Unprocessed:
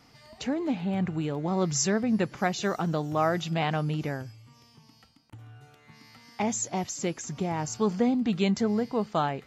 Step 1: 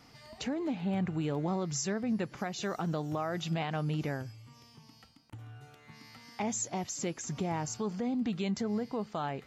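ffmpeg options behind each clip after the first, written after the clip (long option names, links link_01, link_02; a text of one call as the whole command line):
ffmpeg -i in.wav -af "alimiter=level_in=0.5dB:limit=-24dB:level=0:latency=1:release=305,volume=-0.5dB" out.wav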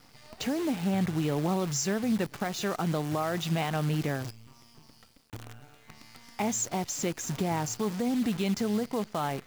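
ffmpeg -i in.wav -af "acrusher=bits=8:dc=4:mix=0:aa=0.000001,volume=4dB" out.wav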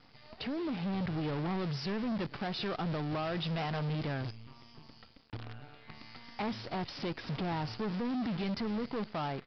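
ffmpeg -i in.wav -af "dynaudnorm=framelen=540:gausssize=3:maxgain=5dB,aresample=11025,asoftclip=type=tanh:threshold=-28.5dB,aresample=44100,volume=-3dB" out.wav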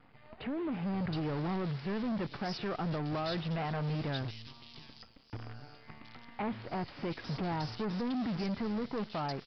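ffmpeg -i in.wav -filter_complex "[0:a]acrossover=split=3000[link_01][link_02];[link_02]adelay=720[link_03];[link_01][link_03]amix=inputs=2:normalize=0" out.wav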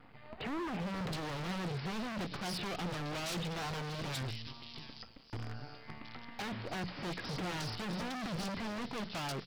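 ffmpeg -i in.wav -af "bandreject=frequency=60:width_type=h:width=6,bandreject=frequency=120:width_type=h:width=6,bandreject=frequency=180:width_type=h:width=6,aeval=exprs='0.015*(abs(mod(val(0)/0.015+3,4)-2)-1)':channel_layout=same,volume=3.5dB" out.wav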